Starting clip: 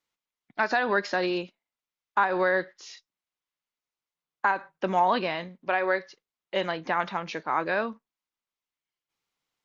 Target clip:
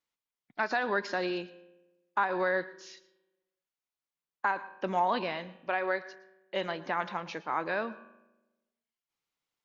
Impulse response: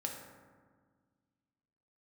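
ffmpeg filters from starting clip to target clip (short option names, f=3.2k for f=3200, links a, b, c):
-filter_complex "[0:a]asplit=2[a][b];[1:a]atrim=start_sample=2205,asetrate=83790,aresample=44100,adelay=114[c];[b][c]afir=irnorm=-1:irlink=0,volume=-12dB[d];[a][d]amix=inputs=2:normalize=0,volume=-5dB"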